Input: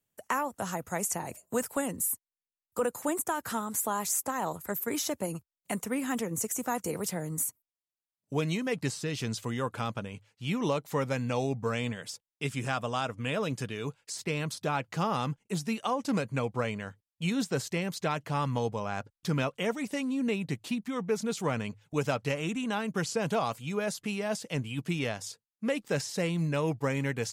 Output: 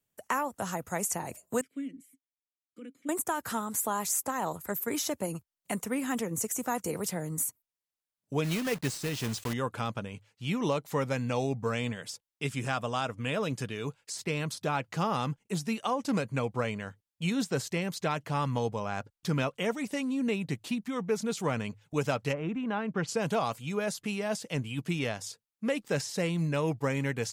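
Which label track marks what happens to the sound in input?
1.610000	3.090000	vowel filter i
8.440000	9.540000	block-companded coder 3-bit
22.320000	23.070000	low-pass 1.4 kHz -> 2.8 kHz

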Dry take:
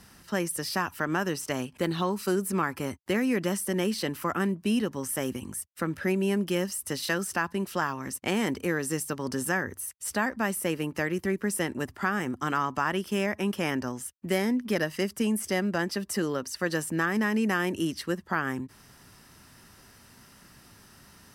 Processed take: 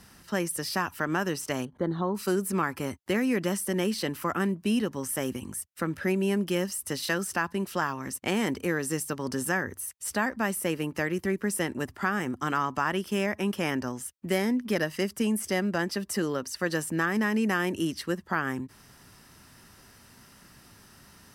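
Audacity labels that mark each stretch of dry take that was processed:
1.650000	2.150000	boxcar filter over 17 samples

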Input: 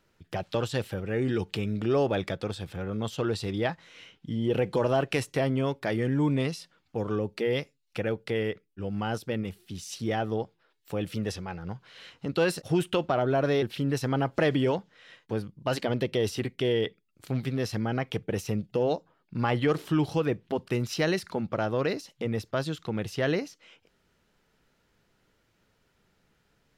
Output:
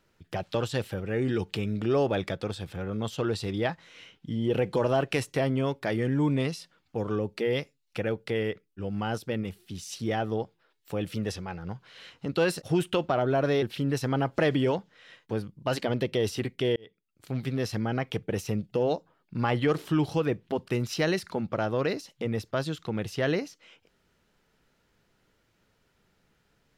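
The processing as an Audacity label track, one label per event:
16.760000	17.510000	fade in

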